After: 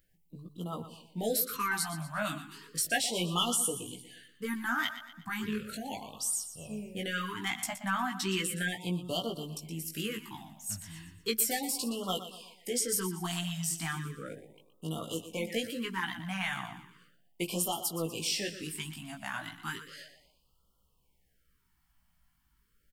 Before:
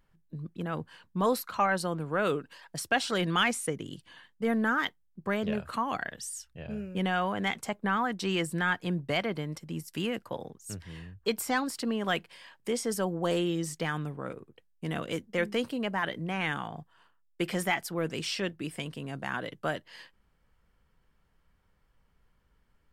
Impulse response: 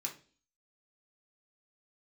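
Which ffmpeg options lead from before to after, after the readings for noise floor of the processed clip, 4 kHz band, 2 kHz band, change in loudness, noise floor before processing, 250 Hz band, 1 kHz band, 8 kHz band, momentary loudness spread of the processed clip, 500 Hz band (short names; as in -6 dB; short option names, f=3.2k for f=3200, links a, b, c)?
-72 dBFS, +1.0 dB, -4.0 dB, -2.0 dB, -69 dBFS, -5.0 dB, -5.5 dB, +7.0 dB, 14 LU, -6.0 dB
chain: -filter_complex "[0:a]flanger=delay=16:depth=3.1:speed=0.24,aemphasis=mode=production:type=75kf,asplit=2[a][b];[b]aecho=0:1:120|240|360|480|600:0.251|0.113|0.0509|0.0229|0.0103[c];[a][c]amix=inputs=2:normalize=0,afftfilt=real='re*(1-between(b*sr/1024,410*pow(2000/410,0.5+0.5*sin(2*PI*0.35*pts/sr))/1.41,410*pow(2000/410,0.5+0.5*sin(2*PI*0.35*pts/sr))*1.41))':imag='im*(1-between(b*sr/1024,410*pow(2000/410,0.5+0.5*sin(2*PI*0.35*pts/sr))/1.41,410*pow(2000/410,0.5+0.5*sin(2*PI*0.35*pts/sr))*1.41))':win_size=1024:overlap=0.75,volume=-2dB"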